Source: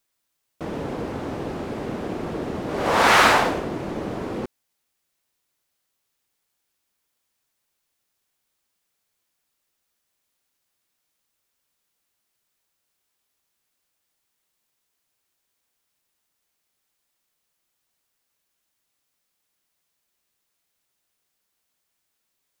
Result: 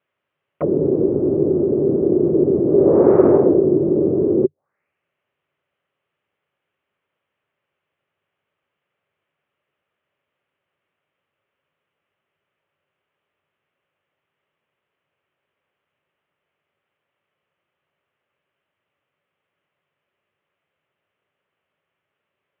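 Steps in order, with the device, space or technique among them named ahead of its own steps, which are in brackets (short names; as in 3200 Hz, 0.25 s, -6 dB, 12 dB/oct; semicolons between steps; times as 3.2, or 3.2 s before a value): envelope filter bass rig (envelope low-pass 360–3100 Hz down, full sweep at -29 dBFS; speaker cabinet 81–2200 Hz, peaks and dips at 95 Hz +7 dB, 150 Hz +9 dB, 400 Hz +7 dB, 570 Hz +9 dB, 1200 Hz +4 dB); gain +1.5 dB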